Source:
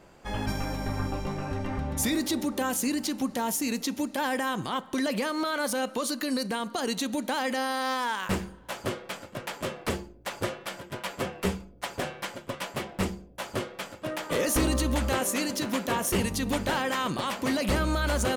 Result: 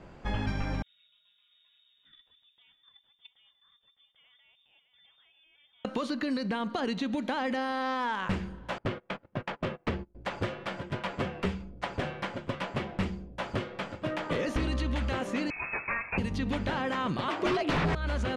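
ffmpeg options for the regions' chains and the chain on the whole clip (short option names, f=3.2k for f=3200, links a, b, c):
-filter_complex "[0:a]asettb=1/sr,asplit=3[a][b][c];[a]atrim=end=0.824[d];[b]atrim=start=0.82:end=5.85,asetpts=PTS-STARTPTS,afade=t=in:d=0.004:c=qsin,afade=t=out:st=5.026:d=0.004:c=qsin,aecho=1:1:611:0.398,atrim=end_sample=221823,lowpass=f=3.2k:t=q:w=0.5098,lowpass=f=3.2k:t=q:w=0.6013,lowpass=f=3.2k:t=q:w=0.9,lowpass=f=3.2k:t=q:w=2.563,afreqshift=-3800,agate=range=-36dB:threshold=-22dB:ratio=16:release=100:detection=peak[e];[c]atrim=start=5.846[f];[d][e]acrossfade=d=0.004:c1=hsin:c2=qsin[g];[g][f]acrossfade=d=0.004:c1=qsin:c2=hsin,asettb=1/sr,asplit=3[h][i][j];[h]atrim=end=8.784[k];[i]atrim=start=8.78:end=10.15,asetpts=PTS-STARTPTS,afade=t=in:d=0.004:c=qsin,afade=t=out:st=1.366:d=0.004:c=qsin,agate=range=-25dB:threshold=-40dB:ratio=16:release=100:detection=peak,adynamicsmooth=sensitivity=6:basefreq=2.3k[l];[j]atrim=start=10.146[m];[k][l]acrossfade=d=0.004:c1=hsin:c2=qsin[n];[n][m]acrossfade=d=0.004:c1=qsin:c2=hsin,asettb=1/sr,asplit=3[o][p][q];[o]atrim=end=15.504[r];[p]atrim=start=15.5:end=16.18,asetpts=PTS-STARTPTS,afade=t=in:d=0.004:c=qsin,afade=t=out:st=0.676:d=0.004:c=qsin,highpass=f=150:p=1,lowpass=f=2.4k:t=q:w=0.5098,lowpass=f=2.4k:t=q:w=0.6013,lowpass=f=2.4k:t=q:w=0.9,lowpass=f=2.4k:t=q:w=2.563,afreqshift=-2800[s];[q]atrim=start=16.176[t];[r][s]acrossfade=d=0.004:c1=hsin:c2=qsin[u];[u][t]acrossfade=d=0.004:c1=qsin:c2=hsin,asettb=1/sr,asplit=3[v][w][x];[v]atrim=end=17.284[y];[w]atrim=start=17.28:end=17.95,asetpts=PTS-STARTPTS,afade=t=in:d=0.004:c=qsin,afade=t=out:st=0.666:d=0.004:c=qsin,agate=range=-15dB:threshold=-27dB:ratio=16:release=100:detection=peak,afreqshift=100,aeval=exprs='0.2*sin(PI/2*5.62*val(0)/0.2)':c=same[z];[x]atrim=start=17.946[aa];[y][z]acrossfade=d=0.004:c1=hsin:c2=qsin[ab];[ab][aa]acrossfade=d=0.004:c1=qsin:c2=hsin,lowpass=6k,bass=f=250:g=6,treble=f=4k:g=-6,acrossover=split=1500|4200[ac][ad][ae];[ac]acompressor=threshold=-31dB:ratio=4[af];[ad]acompressor=threshold=-41dB:ratio=4[ag];[ae]acompressor=threshold=-58dB:ratio=4[ah];[af][ag][ah]amix=inputs=3:normalize=0,volume=2dB"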